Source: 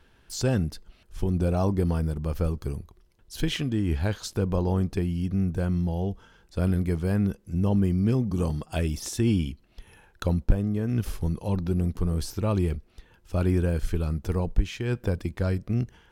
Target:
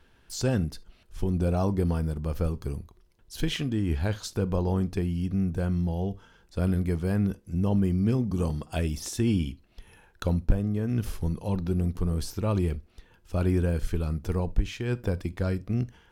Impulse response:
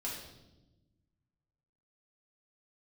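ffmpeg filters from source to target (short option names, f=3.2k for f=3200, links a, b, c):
-filter_complex "[0:a]asplit=2[a][b];[1:a]atrim=start_sample=2205,atrim=end_sample=3528[c];[b][c]afir=irnorm=-1:irlink=0,volume=-16dB[d];[a][d]amix=inputs=2:normalize=0,volume=-2dB"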